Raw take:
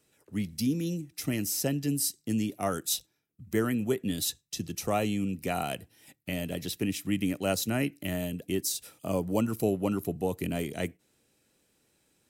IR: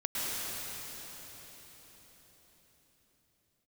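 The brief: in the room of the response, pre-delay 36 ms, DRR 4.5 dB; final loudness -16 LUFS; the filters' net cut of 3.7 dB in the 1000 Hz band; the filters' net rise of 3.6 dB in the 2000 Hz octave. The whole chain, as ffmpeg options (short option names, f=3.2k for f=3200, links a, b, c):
-filter_complex "[0:a]equalizer=f=1k:t=o:g=-8,equalizer=f=2k:t=o:g=6.5,asplit=2[a][b];[1:a]atrim=start_sample=2205,adelay=36[c];[b][c]afir=irnorm=-1:irlink=0,volume=-12.5dB[d];[a][d]amix=inputs=2:normalize=0,volume=14dB"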